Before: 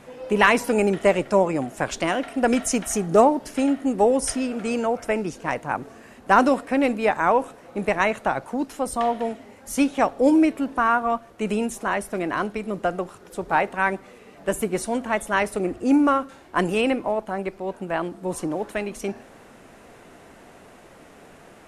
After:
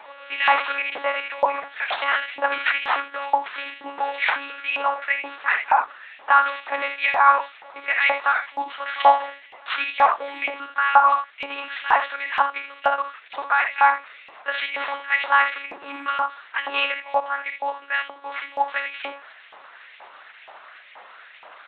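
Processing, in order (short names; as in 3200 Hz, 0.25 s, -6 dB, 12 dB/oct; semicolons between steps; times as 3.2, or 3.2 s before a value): limiter -10.5 dBFS, peak gain reduction 9 dB; early reflections 51 ms -7.5 dB, 78 ms -8.5 dB; careless resampling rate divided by 6×, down none, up zero stuff; monotone LPC vocoder at 8 kHz 280 Hz; LFO high-pass saw up 2.1 Hz 800–2500 Hz; gain +4 dB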